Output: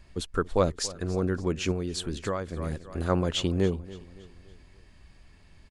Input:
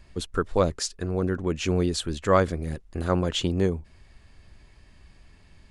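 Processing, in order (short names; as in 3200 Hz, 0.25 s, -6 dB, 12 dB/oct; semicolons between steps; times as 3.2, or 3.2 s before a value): feedback echo 0.283 s, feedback 46%, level -18.5 dB; 1.71–2.57 compressor 12:1, threshold -25 dBFS, peak gain reduction 12 dB; gain -1.5 dB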